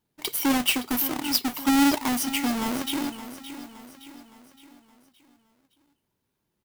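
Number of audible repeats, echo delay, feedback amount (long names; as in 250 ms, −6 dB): 4, 567 ms, 48%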